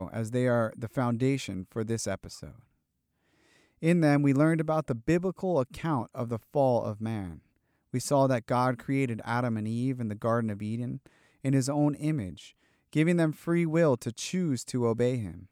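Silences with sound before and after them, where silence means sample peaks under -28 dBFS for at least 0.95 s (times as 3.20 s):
2.15–3.84 s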